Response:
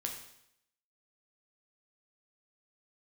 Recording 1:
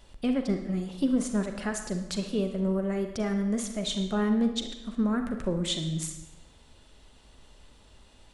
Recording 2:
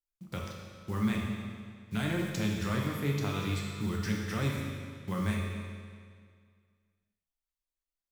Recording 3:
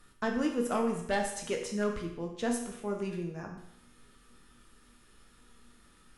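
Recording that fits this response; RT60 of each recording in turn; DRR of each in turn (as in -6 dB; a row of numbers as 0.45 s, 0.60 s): 3; 1.0 s, 2.0 s, 0.75 s; 5.5 dB, -2.0 dB, 1.0 dB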